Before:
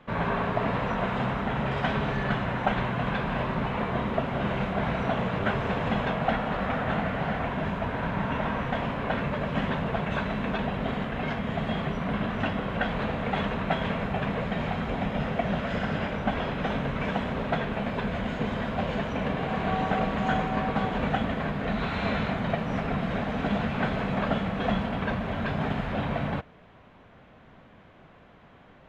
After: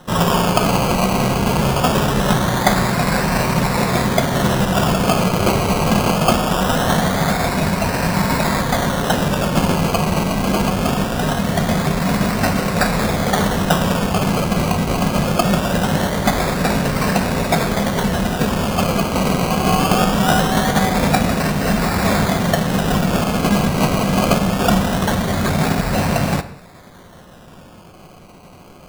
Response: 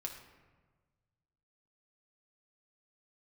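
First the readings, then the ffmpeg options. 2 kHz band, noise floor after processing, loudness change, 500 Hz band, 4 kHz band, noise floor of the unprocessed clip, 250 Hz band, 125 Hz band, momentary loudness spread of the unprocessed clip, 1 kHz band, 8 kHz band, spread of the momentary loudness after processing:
+9.0 dB, -42 dBFS, +11.5 dB, +10.5 dB, +15.5 dB, -53 dBFS, +11.5 dB, +12.0 dB, 3 LU, +10.5 dB, n/a, 3 LU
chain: -filter_complex "[0:a]acrusher=samples=19:mix=1:aa=0.000001:lfo=1:lforange=11.4:lforate=0.22,asplit=2[a][b];[1:a]atrim=start_sample=2205,afade=t=out:st=0.25:d=0.01,atrim=end_sample=11466[c];[b][c]afir=irnorm=-1:irlink=0,volume=0dB[d];[a][d]amix=inputs=2:normalize=0,volume=6.5dB"

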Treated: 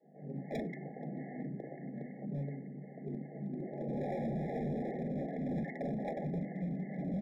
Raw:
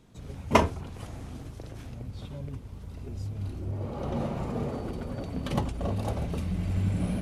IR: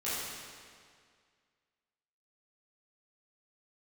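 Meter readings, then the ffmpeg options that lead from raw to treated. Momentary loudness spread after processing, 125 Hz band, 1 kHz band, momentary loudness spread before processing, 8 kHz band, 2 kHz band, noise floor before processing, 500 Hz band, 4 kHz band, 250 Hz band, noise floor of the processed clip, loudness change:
8 LU, -9.5 dB, -12.5 dB, 16 LU, under -25 dB, -11.0 dB, -44 dBFS, -6.0 dB, under -20 dB, -3.5 dB, -49 dBFS, -7.5 dB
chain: -filter_complex "[0:a]aeval=exprs='val(0)+0.00316*(sin(2*PI*50*n/s)+sin(2*PI*2*50*n/s)/2+sin(2*PI*3*50*n/s)/3+sin(2*PI*4*50*n/s)/4+sin(2*PI*5*50*n/s)/5)':c=same,acompressor=threshold=-30dB:ratio=8,lowshelf=f=450:g=-3.5,bandreject=f=60:t=h:w=6,bandreject=f=120:t=h:w=6,bandreject=f=180:t=h:w=6,bandreject=f=240:t=h:w=6,bandreject=f=300:t=h:w=6,bandreject=f=360:t=h:w=6,bandreject=f=420:t=h:w=6,bandreject=f=480:t=h:w=6,acompressor=mode=upward:threshold=-50dB:ratio=2.5,adynamicequalizer=threshold=0.00282:dfrequency=230:dqfactor=0.83:tfrequency=230:tqfactor=0.83:attack=5:release=100:ratio=0.375:range=3:mode=boostabove:tftype=bell,acrossover=split=280|1300[a][b][c];[a]adelay=40[d];[c]adelay=180[e];[d][b][e]amix=inputs=3:normalize=0,afftfilt=real='re*between(b*sr/4096,130,2200)':imag='im*between(b*sr/4096,130,2200)':win_size=4096:overlap=0.75,acrossover=split=440[f][g];[f]aeval=exprs='val(0)*(1-0.7/2+0.7/2*cos(2*PI*2.5*n/s))':c=same[h];[g]aeval=exprs='val(0)*(1-0.7/2-0.7/2*cos(2*PI*2.5*n/s))':c=same[i];[h][i]amix=inputs=2:normalize=0,asoftclip=type=hard:threshold=-40dB,afftfilt=real='re*eq(mod(floor(b*sr/1024/820),2),0)':imag='im*eq(mod(floor(b*sr/1024/820),2),0)':win_size=1024:overlap=0.75,volume=7dB"

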